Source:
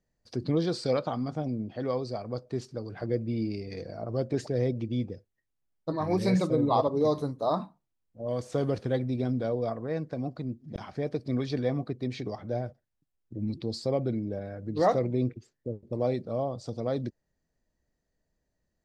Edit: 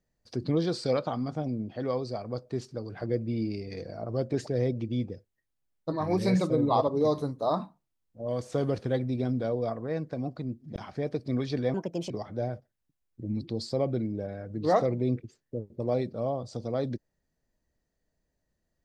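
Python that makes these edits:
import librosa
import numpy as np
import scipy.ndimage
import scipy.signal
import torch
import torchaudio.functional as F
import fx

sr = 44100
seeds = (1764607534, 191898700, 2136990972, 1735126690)

y = fx.edit(x, sr, fx.speed_span(start_s=11.74, length_s=0.49, speed=1.35), tone=tone)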